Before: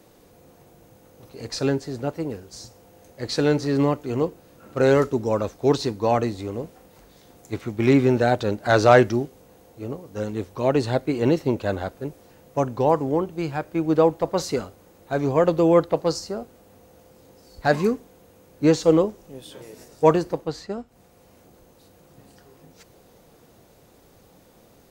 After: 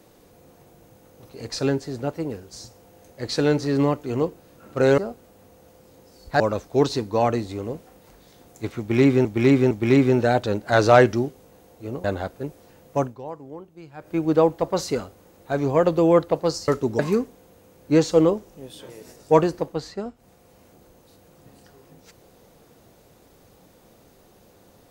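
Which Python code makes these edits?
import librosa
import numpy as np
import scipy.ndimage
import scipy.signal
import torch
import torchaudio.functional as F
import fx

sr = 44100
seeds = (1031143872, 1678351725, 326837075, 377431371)

y = fx.edit(x, sr, fx.swap(start_s=4.98, length_s=0.31, other_s=16.29, other_length_s=1.42),
    fx.repeat(start_s=7.68, length_s=0.46, count=3),
    fx.cut(start_s=10.01, length_s=1.64),
    fx.fade_down_up(start_s=12.65, length_s=1.05, db=-16.0, fade_s=0.16, curve='qua'), tone=tone)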